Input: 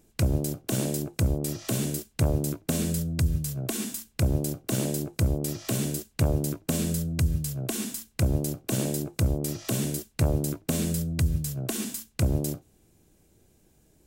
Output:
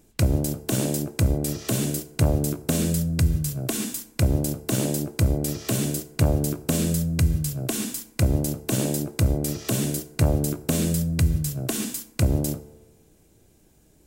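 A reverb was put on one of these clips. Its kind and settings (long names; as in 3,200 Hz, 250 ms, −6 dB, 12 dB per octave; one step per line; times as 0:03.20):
feedback delay network reverb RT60 1.3 s, low-frequency decay 0.75×, high-frequency decay 0.45×, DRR 13.5 dB
level +3.5 dB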